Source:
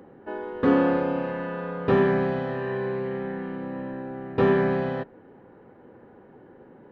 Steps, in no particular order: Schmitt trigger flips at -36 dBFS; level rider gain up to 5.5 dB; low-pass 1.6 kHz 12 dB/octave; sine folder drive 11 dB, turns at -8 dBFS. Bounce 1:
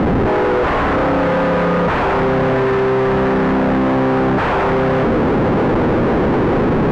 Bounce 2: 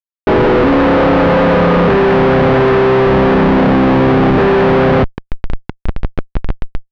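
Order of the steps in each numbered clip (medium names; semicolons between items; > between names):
level rider > sine folder > Schmitt trigger > low-pass; level rider > Schmitt trigger > low-pass > sine folder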